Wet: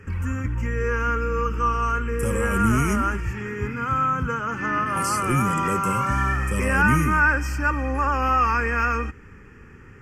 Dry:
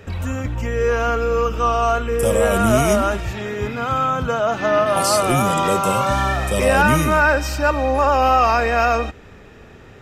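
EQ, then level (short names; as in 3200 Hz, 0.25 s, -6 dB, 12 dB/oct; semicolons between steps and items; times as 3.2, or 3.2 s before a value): high shelf 11000 Hz -11.5 dB; fixed phaser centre 1600 Hz, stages 4; -1.0 dB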